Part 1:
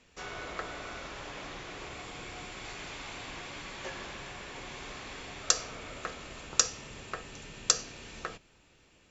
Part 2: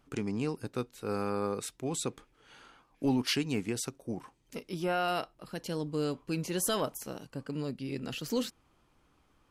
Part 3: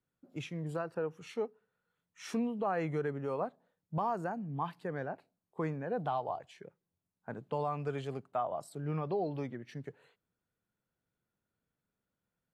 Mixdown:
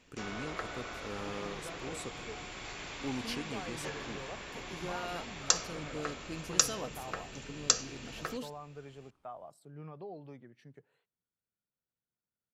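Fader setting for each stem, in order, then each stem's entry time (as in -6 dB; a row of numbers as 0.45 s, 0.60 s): -1.0 dB, -9.5 dB, -11.5 dB; 0.00 s, 0.00 s, 0.90 s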